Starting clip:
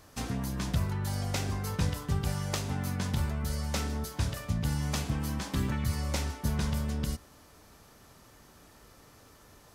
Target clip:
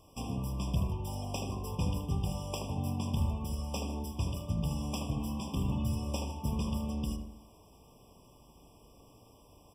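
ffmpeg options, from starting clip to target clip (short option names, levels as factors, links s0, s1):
-filter_complex "[0:a]asplit=2[s0][s1];[s1]adelay=78,lowpass=f=1500:p=1,volume=0.668,asplit=2[s2][s3];[s3]adelay=78,lowpass=f=1500:p=1,volume=0.49,asplit=2[s4][s5];[s5]adelay=78,lowpass=f=1500:p=1,volume=0.49,asplit=2[s6][s7];[s7]adelay=78,lowpass=f=1500:p=1,volume=0.49,asplit=2[s8][s9];[s9]adelay=78,lowpass=f=1500:p=1,volume=0.49,asplit=2[s10][s11];[s11]adelay=78,lowpass=f=1500:p=1,volume=0.49[s12];[s0][s2][s4][s6][s8][s10][s12]amix=inputs=7:normalize=0,afftfilt=real='re*eq(mod(floor(b*sr/1024/1200),2),0)':imag='im*eq(mod(floor(b*sr/1024/1200),2),0)':win_size=1024:overlap=0.75,volume=0.708"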